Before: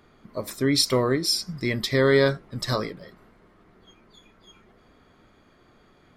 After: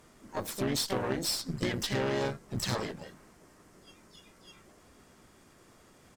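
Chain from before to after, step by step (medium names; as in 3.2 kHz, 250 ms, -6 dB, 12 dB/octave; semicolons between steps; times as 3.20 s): compression 5:1, threshold -27 dBFS, peak gain reduction 12 dB; band noise 4.7–9.7 kHz -67 dBFS; harmony voices -3 st -5 dB, +7 st -5 dB; Chebyshev shaper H 4 -16 dB, 6 -13 dB, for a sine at -14 dBFS; trim -4 dB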